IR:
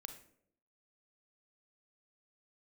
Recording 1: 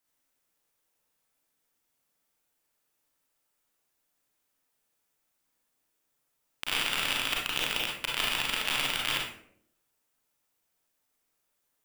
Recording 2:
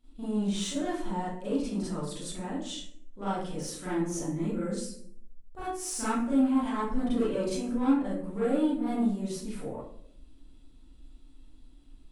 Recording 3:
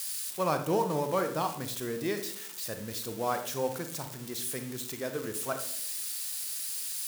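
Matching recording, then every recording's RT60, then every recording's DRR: 3; 0.70, 0.70, 0.70 seconds; −3.0, −11.5, 6.5 decibels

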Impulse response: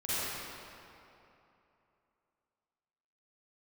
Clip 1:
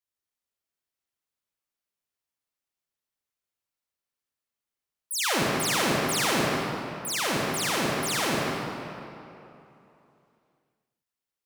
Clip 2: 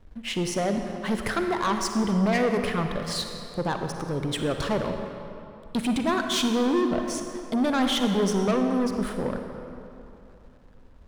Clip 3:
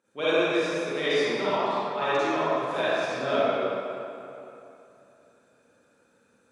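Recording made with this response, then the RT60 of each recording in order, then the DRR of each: 3; 2.9, 2.9, 2.9 seconds; −4.0, 4.5, −14.0 decibels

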